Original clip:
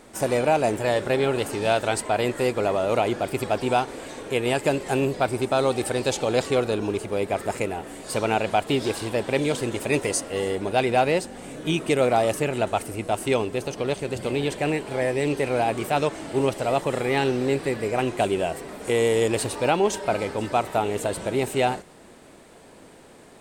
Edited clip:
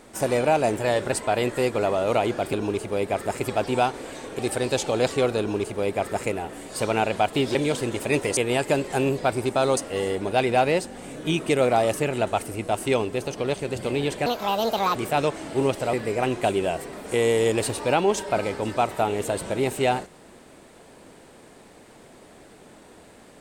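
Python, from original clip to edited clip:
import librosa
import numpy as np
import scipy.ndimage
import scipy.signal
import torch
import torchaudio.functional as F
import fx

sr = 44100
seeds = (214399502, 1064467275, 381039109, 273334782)

y = fx.edit(x, sr, fx.cut(start_s=1.12, length_s=0.82),
    fx.move(start_s=4.33, length_s=1.4, to_s=10.17),
    fx.duplicate(start_s=6.73, length_s=0.88, to_s=3.35),
    fx.cut(start_s=8.89, length_s=0.46),
    fx.speed_span(start_s=14.66, length_s=1.08, speed=1.56),
    fx.cut(start_s=16.72, length_s=0.97), tone=tone)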